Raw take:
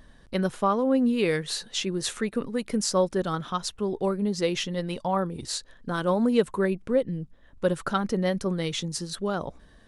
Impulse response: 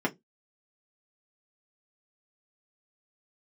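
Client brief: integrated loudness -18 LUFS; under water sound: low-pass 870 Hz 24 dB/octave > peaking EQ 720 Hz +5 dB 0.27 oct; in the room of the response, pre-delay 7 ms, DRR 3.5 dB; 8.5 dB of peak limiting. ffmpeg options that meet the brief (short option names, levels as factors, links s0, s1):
-filter_complex "[0:a]alimiter=limit=0.133:level=0:latency=1,asplit=2[s0][s1];[1:a]atrim=start_sample=2205,adelay=7[s2];[s1][s2]afir=irnorm=-1:irlink=0,volume=0.224[s3];[s0][s3]amix=inputs=2:normalize=0,lowpass=f=870:w=0.5412,lowpass=f=870:w=1.3066,equalizer=f=720:t=o:w=0.27:g=5,volume=2.24"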